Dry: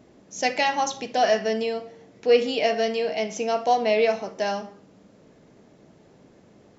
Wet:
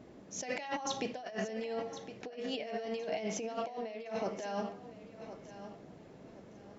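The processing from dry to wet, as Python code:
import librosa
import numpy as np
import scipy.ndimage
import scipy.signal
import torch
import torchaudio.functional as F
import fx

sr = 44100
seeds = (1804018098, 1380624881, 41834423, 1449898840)

y = fx.high_shelf(x, sr, hz=4300.0, db=-7.0)
y = fx.over_compress(y, sr, threshold_db=-32.0, ratio=-1.0)
y = fx.echo_feedback(y, sr, ms=1063, feedback_pct=28, wet_db=-12.5)
y = F.gain(torch.from_numpy(y), -7.5).numpy()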